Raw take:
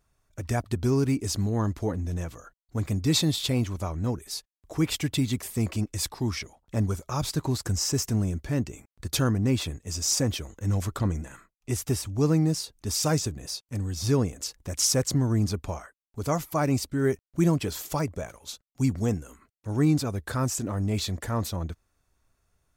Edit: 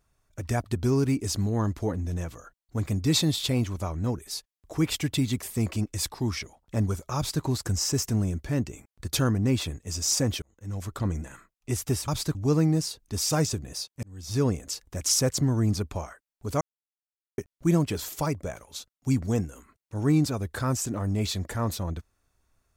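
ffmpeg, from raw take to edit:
-filter_complex "[0:a]asplit=7[s0][s1][s2][s3][s4][s5][s6];[s0]atrim=end=10.42,asetpts=PTS-STARTPTS,afade=t=out:st=10.416:d=0.004:c=hsin[s7];[s1]atrim=start=10.42:end=12.082,asetpts=PTS-STARTPTS,afade=t=in:d=0.78[s8];[s2]atrim=start=7.158:end=7.432[s9];[s3]atrim=start=12.078:end=13.76,asetpts=PTS-STARTPTS,afade=t=out:st=1.678:d=0.004:c=hsin[s10];[s4]atrim=start=13.76:end=16.34,asetpts=PTS-STARTPTS,afade=t=in:d=0.45,afade=t=out:st=2.576:d=0.004:c=hsin[s11];[s5]atrim=start=16.34:end=17.11,asetpts=PTS-STARTPTS,volume=0[s12];[s6]atrim=start=17.11,asetpts=PTS-STARTPTS,afade=t=in:d=0.004:c=hsin[s13];[s7][s8]concat=n=2:v=0:a=1[s14];[s14][s9]acrossfade=d=0.004:c1=hsin:c2=hsin[s15];[s10][s11][s12][s13]concat=n=4:v=0:a=1[s16];[s15][s16]acrossfade=d=0.004:c1=hsin:c2=hsin"

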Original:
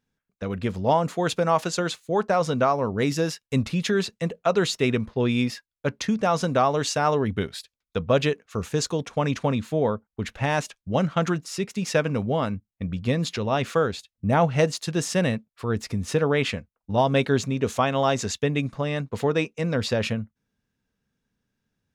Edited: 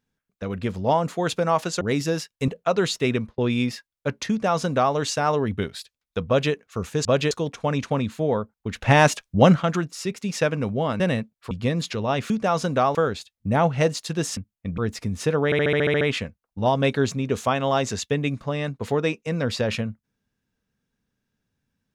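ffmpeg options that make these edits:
-filter_complex "[0:a]asplit=22[s0][s1][s2][s3][s4][s5][s6][s7][s8][s9][s10][s11][s12][s13][s14][s15][s16][s17][s18][s19][s20][s21];[s0]atrim=end=1.812[s22];[s1]atrim=start=2.918:end=3.592[s23];[s2]atrim=start=4.268:end=5.17,asetpts=PTS-STARTPTS,afade=t=out:st=0.642:d=0.26:c=qsin[s24];[s3]atrim=start=5.17:end=8.842,asetpts=PTS-STARTPTS,afade=t=in:d=0.004:c=hsin[s25];[s4]atrim=start=8.058:end=8.322[s26];[s5]atrim=start=8.838:end=10.352[s27];[s6]atrim=start=10.348:end=11.162,asetpts=PTS-STARTPTS,volume=2.66[s28];[s7]atrim=start=11.158:end=12.532[s29];[s8]atrim=start=15.148:end=15.662[s30];[s9]atrim=start=12.938:end=13.732[s31];[s10]atrim=start=6.088:end=6.742[s32];[s11]atrim=start=13.728:end=15.152[s33];[s12]atrim=start=12.528:end=12.942[s34];[s13]atrim=start=15.658:end=16.402[s35];[s14]atrim=start=16.328:end=16.402[s36];[s15]atrim=start=16.328:end=16.402[s37];[s16]atrim=start=16.328:end=16.402[s38];[s17]atrim=start=16.328:end=16.402[s39];[s18]atrim=start=16.328:end=16.402[s40];[s19]atrim=start=16.328:end=16.402[s41];[s20]atrim=start=16.328:end=16.402[s42];[s21]atrim=start=16.328[s43];[s22][s23]acrossfade=d=0.004:c1=hsin:c2=hsin[s44];[s24][s25]concat=n=2:v=0:a=1[s45];[s44][s45]acrossfade=d=0.004:c1=hsin:c2=hsin[s46];[s46][s26]acrossfade=d=0.004:c1=hsin:c2=hsin[s47];[s47][s27]acrossfade=d=0.004:c1=hsin:c2=hsin[s48];[s48][s28]acrossfade=d=0.004:c1=hsin:c2=hsin[s49];[s49][s29]acrossfade=d=0.004:c1=hsin:c2=hsin[s50];[s50][s30]acrossfade=d=0.004:c1=hsin:c2=hsin[s51];[s51][s31]acrossfade=d=0.004:c1=hsin:c2=hsin[s52];[s52][s32]acrossfade=d=0.004:c1=hsin:c2=hsin[s53];[s53][s33]acrossfade=d=0.004:c1=hsin:c2=hsin[s54];[s54][s34]acrossfade=d=0.004:c1=hsin:c2=hsin[s55];[s55][s35]acrossfade=d=0.004:c1=hsin:c2=hsin[s56];[s56][s36]acrossfade=d=0.004:c1=hsin:c2=hsin[s57];[s57][s37]acrossfade=d=0.004:c1=hsin:c2=hsin[s58];[s58][s38]acrossfade=d=0.004:c1=hsin:c2=hsin[s59];[s59][s39]acrossfade=d=0.004:c1=hsin:c2=hsin[s60];[s60][s40]acrossfade=d=0.004:c1=hsin:c2=hsin[s61];[s61][s41]acrossfade=d=0.004:c1=hsin:c2=hsin[s62];[s62][s42]acrossfade=d=0.004:c1=hsin:c2=hsin[s63];[s63][s43]acrossfade=d=0.004:c1=hsin:c2=hsin"

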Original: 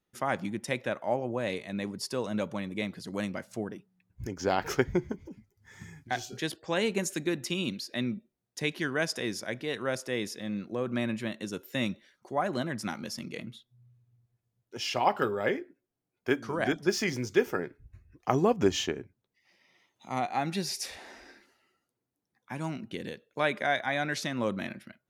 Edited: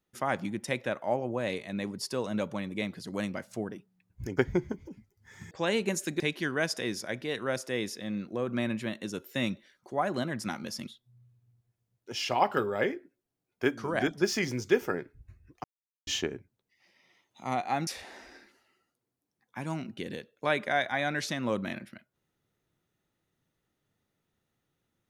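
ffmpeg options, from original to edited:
-filter_complex "[0:a]asplit=8[s0][s1][s2][s3][s4][s5][s6][s7];[s0]atrim=end=4.382[s8];[s1]atrim=start=4.778:end=5.912[s9];[s2]atrim=start=6.598:end=7.292[s10];[s3]atrim=start=8.588:end=13.262[s11];[s4]atrim=start=13.518:end=18.29,asetpts=PTS-STARTPTS,afade=t=out:st=4.768:d=0.004:c=hsin[s12];[s5]atrim=start=18.29:end=18.72,asetpts=PTS-STARTPTS,volume=0[s13];[s6]atrim=start=18.72:end=20.522,asetpts=PTS-STARTPTS,afade=t=in:d=0.004:c=hsin[s14];[s7]atrim=start=20.808[s15];[s8][s9]acrossfade=d=0.004:c1=hsin:c2=hsin[s16];[s16][s10]acrossfade=d=0.004:c1=hsin:c2=hsin[s17];[s17][s11]acrossfade=d=0.004:c1=hsin:c2=hsin[s18];[s12][s13][s14]concat=n=3:v=0:a=1[s19];[s18][s19]acrossfade=d=0.004:c1=hsin:c2=hsin[s20];[s20][s15]acrossfade=d=0.004:c1=hsin:c2=hsin"

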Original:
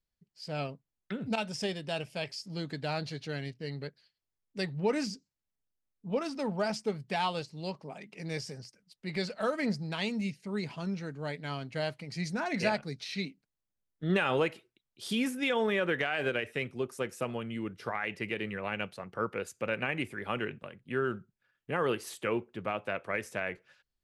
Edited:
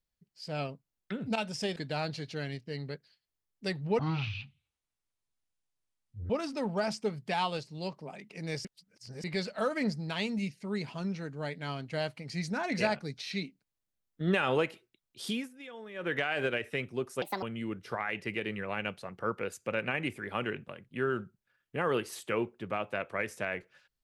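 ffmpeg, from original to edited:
-filter_complex "[0:a]asplit=10[s0][s1][s2][s3][s4][s5][s6][s7][s8][s9];[s0]atrim=end=1.762[s10];[s1]atrim=start=2.688:end=4.924[s11];[s2]atrim=start=4.92:end=6.12,asetpts=PTS-STARTPTS,asetrate=22932,aresample=44100,atrim=end_sample=101769,asetpts=PTS-STARTPTS[s12];[s3]atrim=start=6.116:end=8.472[s13];[s4]atrim=start=8.468:end=9.062,asetpts=PTS-STARTPTS,areverse[s14];[s5]atrim=start=9.058:end=15.31,asetpts=PTS-STARTPTS,afade=t=out:st=6.032:d=0.22:silence=0.141254[s15];[s6]atrim=start=15.31:end=15.76,asetpts=PTS-STARTPTS,volume=0.141[s16];[s7]atrim=start=15.76:end=17.044,asetpts=PTS-STARTPTS,afade=t=in:d=0.22:silence=0.141254[s17];[s8]atrim=start=17.04:end=17.37,asetpts=PTS-STARTPTS,asetrate=70560,aresample=44100[s18];[s9]atrim=start=17.366[s19];[s10][s11]acrossfade=d=0.004:c1=hsin:c2=hsin[s20];[s20][s12]acrossfade=d=0.004:c1=hsin:c2=hsin[s21];[s21][s13]acrossfade=d=0.004:c1=hsin:c2=hsin[s22];[s22][s14]acrossfade=d=0.004:c1=hsin:c2=hsin[s23];[s15][s16][s17]concat=n=3:v=0:a=1[s24];[s23][s24]acrossfade=d=0.004:c1=hsin:c2=hsin[s25];[s25][s18]acrossfade=d=0.004:c1=hsin:c2=hsin[s26];[s26][s19]acrossfade=d=0.004:c1=hsin:c2=hsin"

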